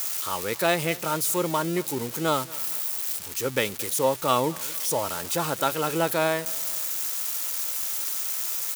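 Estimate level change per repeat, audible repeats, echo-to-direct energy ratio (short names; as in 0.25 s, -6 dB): -6.0 dB, 2, -20.5 dB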